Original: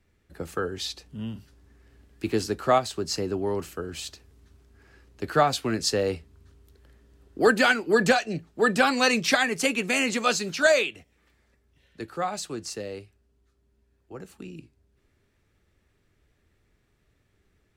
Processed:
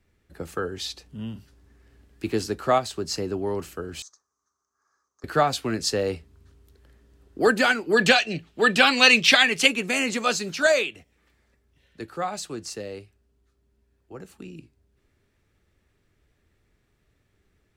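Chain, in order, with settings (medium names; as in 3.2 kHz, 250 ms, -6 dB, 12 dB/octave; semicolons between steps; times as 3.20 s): 4.02–5.24 s: two resonant band-passes 2.7 kHz, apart 2.4 oct; 7.97–9.68 s: peaking EQ 3 kHz +12.5 dB 1.2 oct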